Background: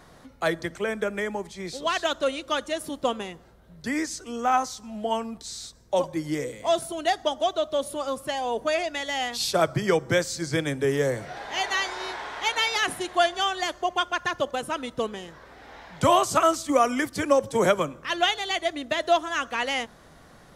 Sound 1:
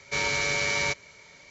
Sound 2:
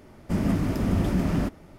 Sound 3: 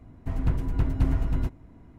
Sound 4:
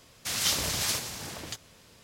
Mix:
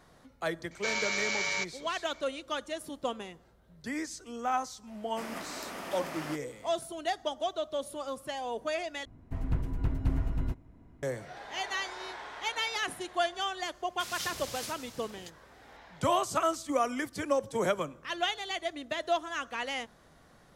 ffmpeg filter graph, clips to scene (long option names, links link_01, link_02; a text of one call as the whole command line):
ffmpeg -i bed.wav -i cue0.wav -i cue1.wav -i cue2.wav -i cue3.wav -filter_complex "[0:a]volume=-8dB[link_01];[1:a]highpass=frequency=570:poles=1[link_02];[2:a]highpass=770[link_03];[link_01]asplit=2[link_04][link_05];[link_04]atrim=end=9.054[link_06];[3:a]atrim=end=1.98,asetpts=PTS-STARTPTS,volume=-5.5dB[link_07];[link_05]atrim=start=11.026[link_08];[link_02]atrim=end=1.5,asetpts=PTS-STARTPTS,volume=-4.5dB,afade=type=in:duration=0.004:curve=hsin,afade=type=out:start_time=1.496:duration=0.004:curve=hsin,adelay=710[link_09];[link_03]atrim=end=1.78,asetpts=PTS-STARTPTS,volume=-2dB,afade=type=in:duration=0.004:curve=hsin,afade=type=out:start_time=1.776:duration=0.004:curve=hsin,adelay=4870[link_10];[4:a]atrim=end=2.03,asetpts=PTS-STARTPTS,volume=-11.5dB,afade=type=in:duration=0.004:curve=hsin,afade=type=out:start_time=2.026:duration=0.004:curve=hsin,adelay=13740[link_11];[link_06][link_07]acrossfade=duration=0.004:curve1=hsin:curve2=hsin[link_12];[link_12][link_08]acrossfade=duration=0.004:curve1=hsin:curve2=hsin[link_13];[link_13][link_09][link_10][link_11]amix=inputs=4:normalize=0" out.wav